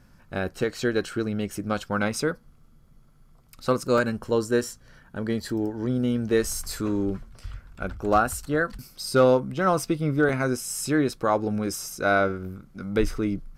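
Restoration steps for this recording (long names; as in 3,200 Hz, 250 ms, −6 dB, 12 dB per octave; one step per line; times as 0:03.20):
clipped peaks rebuilt −10 dBFS
repair the gap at 0:03.98/0:07.75/0:10.29, 1.6 ms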